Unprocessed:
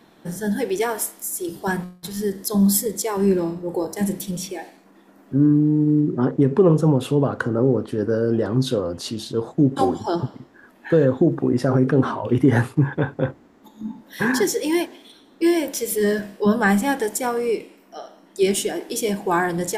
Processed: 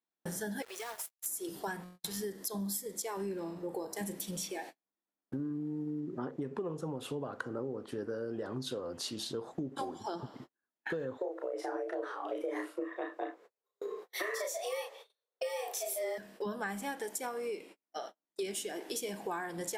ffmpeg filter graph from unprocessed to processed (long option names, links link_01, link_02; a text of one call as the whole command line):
ffmpeg -i in.wav -filter_complex "[0:a]asettb=1/sr,asplit=3[link_01][link_02][link_03];[link_01]atrim=end=0.624[link_04];[link_02]atrim=start=0.62:end=1.26,asetpts=PTS-STARTPTS,afade=type=in:duration=0.004:curve=qsin,afade=type=out:start_time=0.636:duration=0.004:curve=qsin,highpass=frequency=510:width=0.5412,highpass=frequency=510:width=1.3066,acompressor=threshold=-34dB:ratio=12:attack=3.2:release=140:knee=1:detection=peak,aeval=exprs='val(0)*gte(abs(val(0)),0.01)':channel_layout=same[link_05];[link_03]atrim=start=1.256[link_06];[link_04][link_05]acrossfade=duration=0.004:curve1=hsin:curve2=qsin[link_07];[link_07][link_06]acrossfade=duration=0.004:curve1=qsin:curve2=hsin,asettb=1/sr,asplit=3[link_08][link_09][link_10];[link_08]atrim=end=11.184[link_11];[link_09]atrim=start=11.18:end=16.18,asetpts=PTS-STARTPTS,afade=type=in:duration=0.004:curve=qsin,afade=type=out:start_time=4.996:duration=0.004:curve=qsin,afreqshift=190,asplit=2[link_12][link_13];[link_13]adelay=33,volume=-3dB[link_14];[link_12][link_14]amix=inputs=2:normalize=0,atrim=end_sample=220500[link_15];[link_10]atrim=start=16.176[link_16];[link_11][link_15]acrossfade=duration=0.004:curve1=hsin:curve2=qsin[link_17];[link_17][link_16]acrossfade=duration=0.004:curve1=qsin:curve2=hsin,agate=range=-42dB:threshold=-39dB:ratio=16:detection=peak,lowshelf=frequency=270:gain=-12,acompressor=threshold=-36dB:ratio=6" out.wav